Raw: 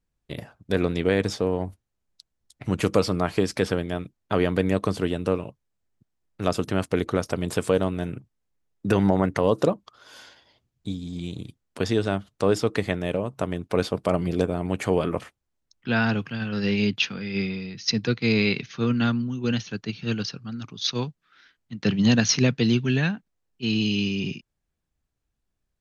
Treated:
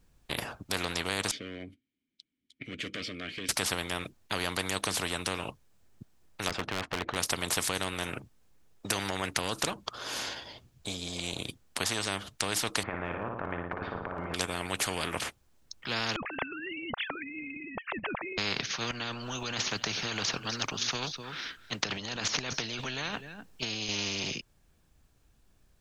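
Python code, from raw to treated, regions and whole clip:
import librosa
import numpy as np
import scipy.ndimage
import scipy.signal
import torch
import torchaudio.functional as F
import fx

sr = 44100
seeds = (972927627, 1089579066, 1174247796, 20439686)

y = fx.chain(x, sr, fx.clip_hard(threshold_db=-18.5),
    fx.vowel_filter(vowel='i'), at=(1.31, 3.49))
y = fx.chain(y, sr, fx.lowpass(hz=1600.0, slope=12),
    fx.clip_hard(threshold_db=-18.5), at=(6.49, 7.16))
y = fx.chain(y, sr, fx.lowpass(hz=1400.0, slope=24),
    fx.over_compress(threshold_db=-27.0, ratio=-0.5),
    fx.room_flutter(wall_m=9.9, rt60_s=0.56), at=(12.83, 14.34))
y = fx.chain(y, sr, fx.sine_speech(),
    fx.lowpass(hz=1600.0, slope=12), at=(16.16, 18.38))
y = fx.chain(y, sr, fx.over_compress(threshold_db=-30.0, ratio=-1.0),
    fx.echo_single(ms=252, db=-23.0), at=(18.91, 23.89))
y = fx.notch(y, sr, hz=2000.0, q=24.0)
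y = fx.spectral_comp(y, sr, ratio=4.0)
y = y * librosa.db_to_amplitude(-4.0)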